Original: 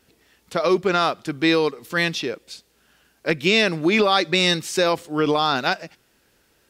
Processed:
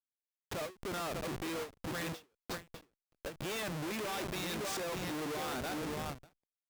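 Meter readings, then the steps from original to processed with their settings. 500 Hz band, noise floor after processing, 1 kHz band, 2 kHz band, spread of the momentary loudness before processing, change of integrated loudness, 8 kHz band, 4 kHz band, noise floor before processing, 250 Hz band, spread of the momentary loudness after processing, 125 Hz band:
-18.5 dB, under -85 dBFS, -17.5 dB, -19.0 dB, 10 LU, -18.5 dB, -9.0 dB, -19.5 dB, -63 dBFS, -17.5 dB, 8 LU, -13.0 dB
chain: compression 8:1, threshold -24 dBFS, peak gain reduction 11 dB; feedback delay 594 ms, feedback 22%, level -8 dB; Schmitt trigger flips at -34 dBFS; bass shelf 63 Hz -11 dB; endings held to a fixed fall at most 230 dB/s; trim -6.5 dB

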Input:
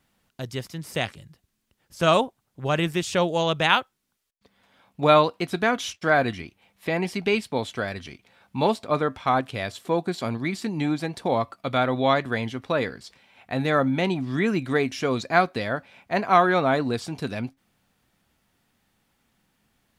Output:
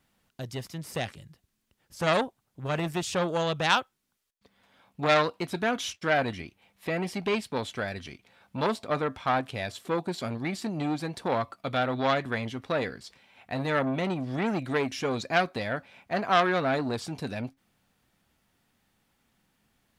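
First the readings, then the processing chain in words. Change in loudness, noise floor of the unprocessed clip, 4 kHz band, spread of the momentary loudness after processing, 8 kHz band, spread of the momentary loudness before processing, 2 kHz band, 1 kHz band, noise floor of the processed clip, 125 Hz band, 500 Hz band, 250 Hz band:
-4.5 dB, -75 dBFS, -4.0 dB, 12 LU, -2.0 dB, 12 LU, -4.0 dB, -5.0 dB, -77 dBFS, -4.5 dB, -5.0 dB, -5.0 dB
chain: transformer saturation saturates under 2.1 kHz; trim -2 dB

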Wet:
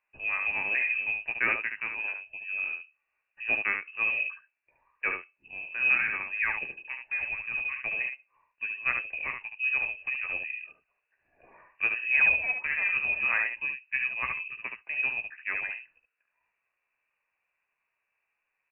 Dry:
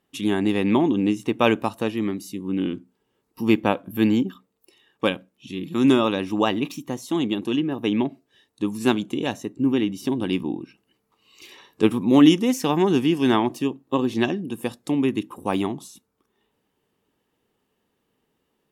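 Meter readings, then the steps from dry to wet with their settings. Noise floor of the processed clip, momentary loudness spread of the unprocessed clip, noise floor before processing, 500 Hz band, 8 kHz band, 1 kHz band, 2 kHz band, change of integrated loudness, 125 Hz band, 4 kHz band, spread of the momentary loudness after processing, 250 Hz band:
-82 dBFS, 11 LU, -74 dBFS, -23.5 dB, under -40 dB, -12.5 dB, +8.0 dB, -5.5 dB, under -25 dB, -18.5 dB, 12 LU, -35.0 dB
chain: frequency inversion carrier 2.8 kHz; three-band isolator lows -13 dB, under 410 Hz, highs -13 dB, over 2.2 kHz; early reflections 15 ms -7.5 dB, 72 ms -5.5 dB; trim -5 dB

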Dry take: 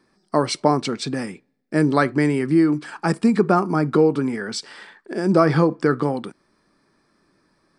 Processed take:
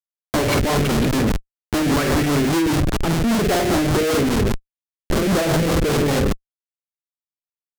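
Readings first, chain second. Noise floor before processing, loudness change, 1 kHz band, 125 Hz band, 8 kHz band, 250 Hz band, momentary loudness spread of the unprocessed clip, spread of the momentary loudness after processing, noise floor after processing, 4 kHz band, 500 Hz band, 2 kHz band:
-66 dBFS, +1.0 dB, -1.0 dB, +3.5 dB, +9.0 dB, +0.5 dB, 12 LU, 6 LU, under -85 dBFS, +6.5 dB, 0.0 dB, +3.0 dB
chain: flutter echo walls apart 8.3 m, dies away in 0.55 s; hard clipper -18 dBFS, distortion -6 dB; low-pass sweep 2.7 kHz -> 680 Hz, 2.26–3.40 s; Schmitt trigger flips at -25 dBFS; rotary cabinet horn 5 Hz; waveshaping leveller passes 2

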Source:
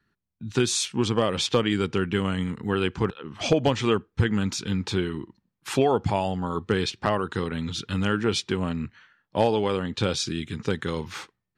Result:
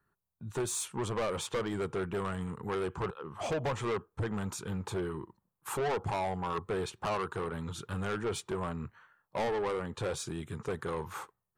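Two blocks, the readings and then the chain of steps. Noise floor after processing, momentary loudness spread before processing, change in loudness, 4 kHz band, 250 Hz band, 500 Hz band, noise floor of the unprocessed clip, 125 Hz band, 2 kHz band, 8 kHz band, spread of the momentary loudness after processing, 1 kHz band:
-84 dBFS, 9 LU, -9.5 dB, -15.0 dB, -12.0 dB, -8.0 dB, -80 dBFS, -10.0 dB, -9.0 dB, -7.5 dB, 7 LU, -6.5 dB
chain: FFT filter 150 Hz 0 dB, 270 Hz -7 dB, 390 Hz +3 dB, 1.1 kHz +8 dB, 2 kHz -6 dB, 5.2 kHz -11 dB, 7.4 kHz +1 dB, 12 kHz +9 dB; saturation -23.5 dBFS, distortion -6 dB; trim -5 dB

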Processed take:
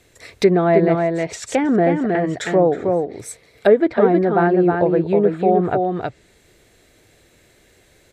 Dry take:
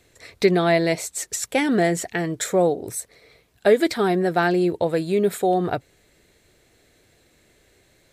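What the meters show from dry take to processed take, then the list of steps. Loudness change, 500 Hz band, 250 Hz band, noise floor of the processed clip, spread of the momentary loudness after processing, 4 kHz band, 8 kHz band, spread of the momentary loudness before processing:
+4.0 dB, +5.0 dB, +5.0 dB, -55 dBFS, 8 LU, no reading, -7.0 dB, 8 LU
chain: band-stop 4.2 kHz, Q 29; delay 317 ms -4 dB; low-pass that closes with the level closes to 1.3 kHz, closed at -17 dBFS; trim +3.5 dB

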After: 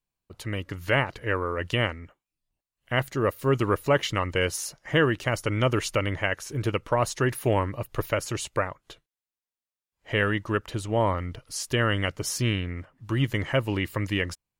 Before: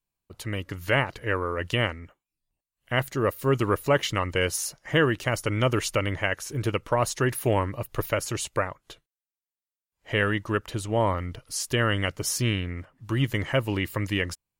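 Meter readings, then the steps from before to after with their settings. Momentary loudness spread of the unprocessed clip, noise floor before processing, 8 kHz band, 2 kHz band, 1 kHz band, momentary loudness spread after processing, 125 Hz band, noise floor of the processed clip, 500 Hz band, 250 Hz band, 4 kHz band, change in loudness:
8 LU, under -85 dBFS, -2.5 dB, 0.0 dB, 0.0 dB, 9 LU, 0.0 dB, under -85 dBFS, 0.0 dB, 0.0 dB, -0.5 dB, 0.0 dB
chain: treble shelf 7.9 kHz -5.5 dB

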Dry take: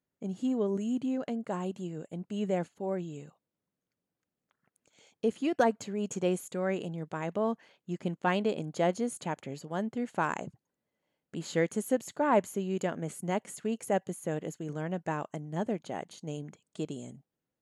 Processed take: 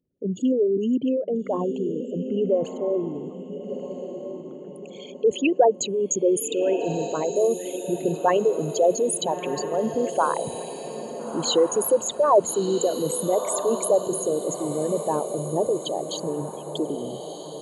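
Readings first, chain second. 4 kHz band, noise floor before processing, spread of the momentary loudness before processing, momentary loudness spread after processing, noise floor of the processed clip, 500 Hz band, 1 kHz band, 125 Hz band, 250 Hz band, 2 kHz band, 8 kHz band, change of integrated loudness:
+13.0 dB, under -85 dBFS, 12 LU, 13 LU, -40 dBFS, +11.5 dB, +8.0 dB, +2.5 dB, +6.0 dB, 0.0 dB, +16.0 dB, +9.0 dB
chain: resonances exaggerated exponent 3; resonant high shelf 2.3 kHz +6.5 dB, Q 3; echo that smears into a reverb 1339 ms, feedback 46%, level -9 dB; trim +9 dB

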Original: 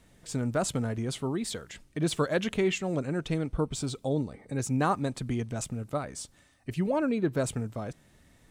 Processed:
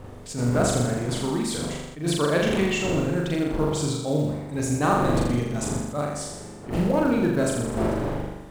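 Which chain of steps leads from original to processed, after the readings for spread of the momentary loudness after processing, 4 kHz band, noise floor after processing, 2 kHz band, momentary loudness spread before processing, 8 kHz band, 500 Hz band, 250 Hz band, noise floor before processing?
8 LU, +6.0 dB, -41 dBFS, +6.5 dB, 11 LU, +6.0 dB, +6.5 dB, +6.5 dB, -62 dBFS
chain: wind noise 460 Hz -38 dBFS; flutter echo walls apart 7 m, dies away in 1 s; in parallel at -9.5 dB: short-mantissa float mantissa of 2-bit; on the sum: attacks held to a fixed rise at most 150 dB/s

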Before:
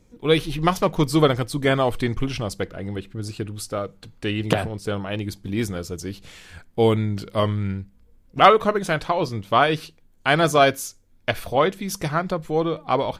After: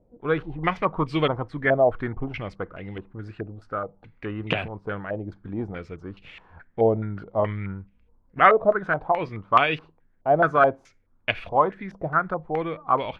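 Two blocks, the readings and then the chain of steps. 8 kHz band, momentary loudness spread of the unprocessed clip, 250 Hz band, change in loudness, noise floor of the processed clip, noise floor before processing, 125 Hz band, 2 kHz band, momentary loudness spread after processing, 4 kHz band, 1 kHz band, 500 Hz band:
under -30 dB, 14 LU, -6.0 dB, -2.0 dB, -62 dBFS, -55 dBFS, -6.5 dB, -1.0 dB, 18 LU, -9.0 dB, -1.0 dB, -2.5 dB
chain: step-sequenced low-pass 4.7 Hz 660–2600 Hz; trim -6.5 dB

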